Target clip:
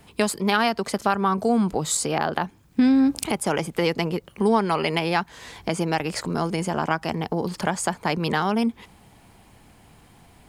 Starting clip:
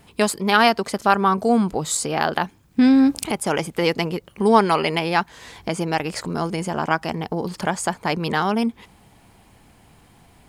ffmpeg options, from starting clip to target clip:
ffmpeg -i in.wav -filter_complex "[0:a]acrossover=split=180[link_01][link_02];[link_02]acompressor=threshold=-19dB:ratio=2.5[link_03];[link_01][link_03]amix=inputs=2:normalize=0,asettb=1/sr,asplit=3[link_04][link_05][link_06];[link_04]atrim=end=2.184[link_07];[link_05]atrim=start=2.18:end=4.8,asetpts=PTS-STARTPTS,afade=type=in:duration=0.004:curve=qsin,afade=type=out:start_time=2.616:duration=0.004:curve=qsin,adynamicequalizer=threshold=0.0224:dfrequency=1700:dqfactor=0.7:tfrequency=1700:tqfactor=0.7:attack=5:release=100:ratio=0.375:range=2:mode=cutabove:tftype=highshelf[link_08];[link_06]atrim=start=4.796[link_09];[link_07][link_08]acrossfade=duration=0.004:curve1=hsin:curve2=qsin[link_10];[link_10][link_09]acrossfade=duration=0.004:curve1=qsin:curve2=hsin" out.wav

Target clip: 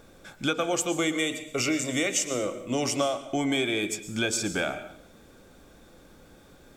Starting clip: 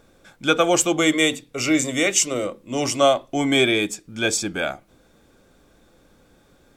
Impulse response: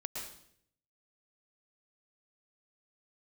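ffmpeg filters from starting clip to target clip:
-filter_complex "[0:a]acompressor=threshold=-27dB:ratio=6,asplit=2[link_01][link_02];[1:a]atrim=start_sample=2205,highshelf=frequency=12000:gain=8[link_03];[link_02][link_03]afir=irnorm=-1:irlink=0,volume=-6.5dB[link_04];[link_01][link_04]amix=inputs=2:normalize=0"

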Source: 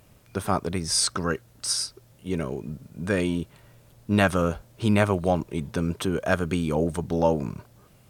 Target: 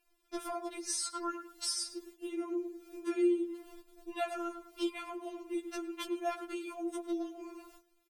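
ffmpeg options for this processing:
ffmpeg -i in.wav -filter_complex "[0:a]asettb=1/sr,asplit=3[link_01][link_02][link_03];[link_01]atrim=end=1.744[link_04];[link_02]atrim=start=1.74:end=4.1,asetpts=PTS-STARTPTS,afade=type=in:duration=0.004:curve=qsin,afade=type=out:start_time=2.356:duration=0.004:curve=qsin,equalizer=frequency=330:width=1.5:gain=9.5[link_05];[link_03]atrim=start=4.096[link_06];[link_04][link_05]acrossfade=duration=0.004:curve1=hsin:curve2=qsin[link_07];[link_07][link_06]acrossfade=duration=0.004:curve1=qsin:curve2=hsin,asplit=2[link_08][link_09];[link_09]adelay=105,lowpass=frequency=2100:poles=1,volume=-10.5dB,asplit=2[link_10][link_11];[link_11]adelay=105,lowpass=frequency=2100:poles=1,volume=0.18[link_12];[link_08][link_10][link_12]amix=inputs=3:normalize=0,agate=range=-18dB:threshold=-50dB:ratio=16:detection=peak,acompressor=threshold=-37dB:ratio=4,afftfilt=real='re*4*eq(mod(b,16),0)':imag='im*4*eq(mod(b,16),0)':win_size=2048:overlap=0.75,volume=4.5dB" out.wav

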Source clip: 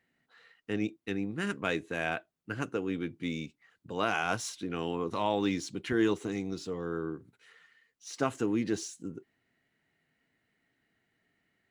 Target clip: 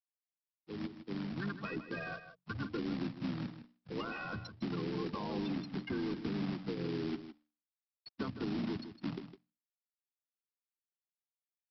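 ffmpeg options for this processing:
ffmpeg -i in.wav -filter_complex "[0:a]aeval=exprs='val(0)+0.5*0.01*sgn(val(0))':channel_layout=same,bandreject=frequency=1700:width=11,afftfilt=real='re*gte(hypot(re,im),0.0794)':imag='im*gte(hypot(re,im),0.0794)':win_size=1024:overlap=0.75,aderivative,bandreject=frequency=60:width_type=h:width=6,bandreject=frequency=120:width_type=h:width=6,bandreject=frequency=180:width_type=h:width=6,bandreject=frequency=240:width_type=h:width=6,bandreject=frequency=300:width_type=h:width=6,asplit=2[link_01][link_02];[link_02]asetrate=33038,aresample=44100,atempo=1.33484,volume=-7dB[link_03];[link_01][link_03]amix=inputs=2:normalize=0,asubboost=boost=11:cutoff=200,alimiter=level_in=20.5dB:limit=-24dB:level=0:latency=1:release=29,volume=-20.5dB,dynaudnorm=framelen=330:gausssize=5:maxgain=8dB,aresample=11025,acrusher=bits=2:mode=log:mix=0:aa=0.000001,aresample=44100,acrossover=split=200|430|1600[link_04][link_05][link_06][link_07];[link_04]acompressor=threshold=-51dB:ratio=4[link_08];[link_05]acompressor=threshold=-50dB:ratio=4[link_09];[link_06]acompressor=threshold=-56dB:ratio=4[link_10];[link_07]acompressor=threshold=-60dB:ratio=4[link_11];[link_08][link_09][link_10][link_11]amix=inputs=4:normalize=0,aecho=1:1:158:0.266,volume=10.5dB" out.wav

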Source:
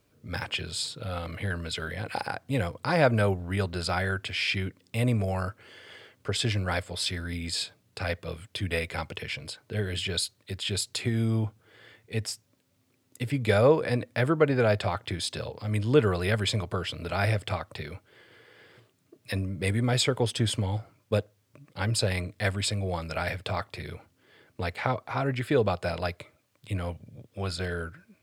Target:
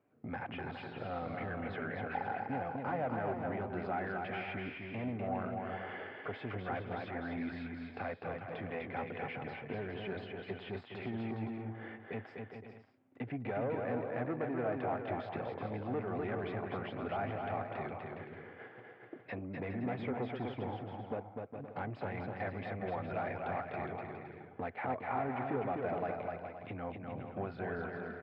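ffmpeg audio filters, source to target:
ffmpeg -i in.wav -filter_complex "[0:a]agate=range=-12dB:threshold=-54dB:ratio=16:detection=peak,acompressor=threshold=-43dB:ratio=3,asoftclip=type=tanh:threshold=-38.5dB,highpass=140,equalizer=frequency=250:width_type=q:width=4:gain=6,equalizer=frequency=380:width_type=q:width=4:gain=3,equalizer=frequency=750:width_type=q:width=4:gain=10,lowpass=frequency=2200:width=0.5412,lowpass=frequency=2200:width=1.3066,asplit=2[link_01][link_02];[link_02]aecho=0:1:250|412.5|518.1|586.8|631.4:0.631|0.398|0.251|0.158|0.1[link_03];[link_01][link_03]amix=inputs=2:normalize=0,volume=4.5dB" out.wav

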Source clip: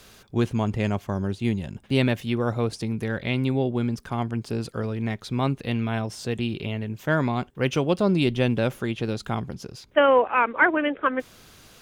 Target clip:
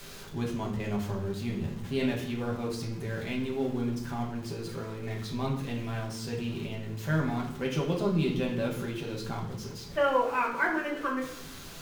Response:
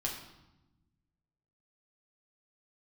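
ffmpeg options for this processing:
-filter_complex "[0:a]aeval=exprs='val(0)+0.5*0.0237*sgn(val(0))':channel_layout=same[link_01];[1:a]atrim=start_sample=2205,asetrate=57330,aresample=44100[link_02];[link_01][link_02]afir=irnorm=-1:irlink=0,volume=-9dB"

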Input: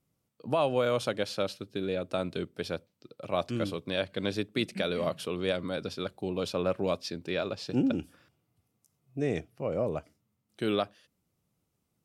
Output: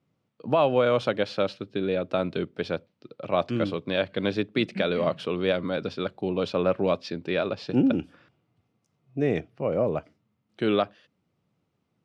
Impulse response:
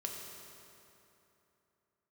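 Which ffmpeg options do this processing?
-af "highpass=100,lowpass=3400,volume=5.5dB"

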